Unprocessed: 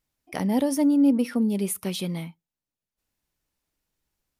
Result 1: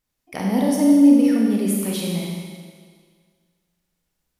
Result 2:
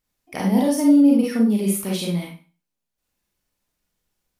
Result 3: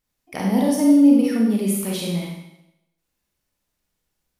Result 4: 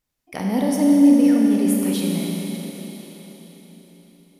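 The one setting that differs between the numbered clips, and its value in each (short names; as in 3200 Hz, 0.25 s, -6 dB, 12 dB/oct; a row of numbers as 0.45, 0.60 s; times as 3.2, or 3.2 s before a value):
Schroeder reverb, RT60: 1.8, 0.35, 0.85, 4.5 s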